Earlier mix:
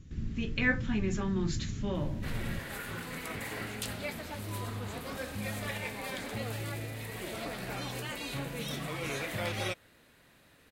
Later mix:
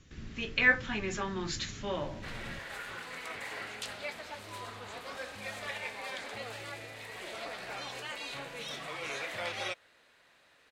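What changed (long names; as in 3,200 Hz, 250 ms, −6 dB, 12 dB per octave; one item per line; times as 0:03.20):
speech +5.5 dB
master: add three-way crossover with the lows and the highs turned down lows −15 dB, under 450 Hz, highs −16 dB, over 7,900 Hz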